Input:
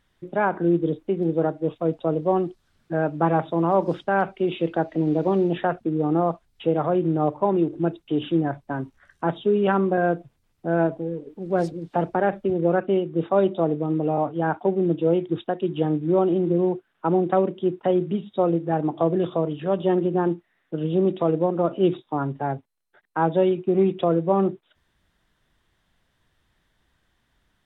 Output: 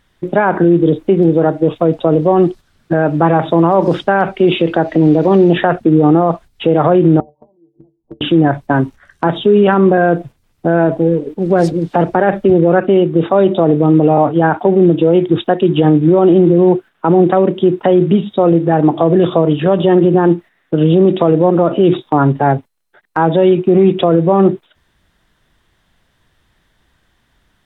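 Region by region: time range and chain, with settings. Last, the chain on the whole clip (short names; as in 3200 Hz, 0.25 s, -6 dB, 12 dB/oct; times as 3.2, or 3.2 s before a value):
7.2–8.21 steep low-pass 980 Hz 72 dB/oct + flipped gate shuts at -21 dBFS, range -35 dB + metallic resonator 68 Hz, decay 0.22 s, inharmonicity 0.03
whole clip: dynamic EQ 1800 Hz, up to +3 dB, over -48 dBFS, Q 6.1; gate -42 dBFS, range -7 dB; maximiser +17.5 dB; gain -1 dB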